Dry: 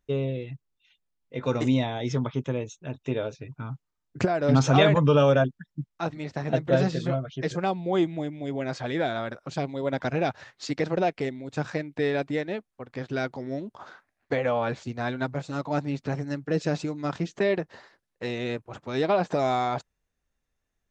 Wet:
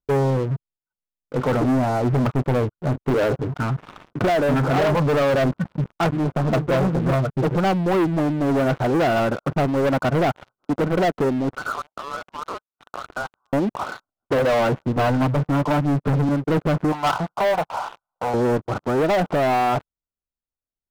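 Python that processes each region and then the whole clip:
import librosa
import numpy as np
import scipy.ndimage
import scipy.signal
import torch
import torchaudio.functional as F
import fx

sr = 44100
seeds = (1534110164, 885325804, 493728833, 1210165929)

y = fx.chain(x, sr, fx.highpass(hz=210.0, slope=6),
    fx.air_absorb(metres=51.0),
    fx.sustainer(db_per_s=54.0), at=(3.1, 5.92))
y = fx.chain(y, sr, fx.freq_invert(carrier_hz=3000),
    fx.clip_hard(threshold_db=-31.5),
    fx.band_squash(depth_pct=40), at=(11.56, 13.53))
y = fx.chain(y, sr, fx.gaussian_blur(sigma=3.9),
    fx.comb(ms=6.7, depth=0.56),
    fx.band_squash(depth_pct=100), at=(14.96, 16.29))
y = fx.chain(y, sr, fx.law_mismatch(coded='mu'),
    fx.low_shelf_res(hz=550.0, db=-13.5, q=3.0), at=(16.92, 18.34))
y = scipy.signal.sosfilt(scipy.signal.cheby1(10, 1.0, 1500.0, 'lowpass', fs=sr, output='sos'), y)
y = fx.rider(y, sr, range_db=4, speed_s=0.5)
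y = fx.leveller(y, sr, passes=5)
y = y * librosa.db_to_amplitude(-4.0)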